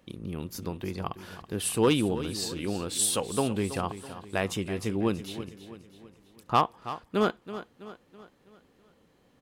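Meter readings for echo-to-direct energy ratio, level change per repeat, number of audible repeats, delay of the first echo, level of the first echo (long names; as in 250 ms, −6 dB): −12.0 dB, −6.5 dB, 4, 327 ms, −13.0 dB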